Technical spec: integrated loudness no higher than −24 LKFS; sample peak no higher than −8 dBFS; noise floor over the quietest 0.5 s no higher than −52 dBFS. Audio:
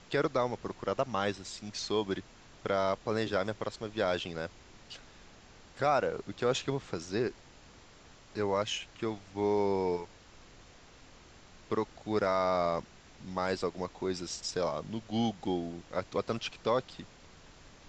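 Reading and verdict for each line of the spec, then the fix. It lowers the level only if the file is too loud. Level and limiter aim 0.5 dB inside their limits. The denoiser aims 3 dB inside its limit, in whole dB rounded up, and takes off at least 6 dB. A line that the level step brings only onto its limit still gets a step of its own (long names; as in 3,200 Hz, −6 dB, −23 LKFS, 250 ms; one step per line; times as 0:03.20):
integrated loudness −33.5 LKFS: in spec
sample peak −15.5 dBFS: in spec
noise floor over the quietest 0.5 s −56 dBFS: in spec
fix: no processing needed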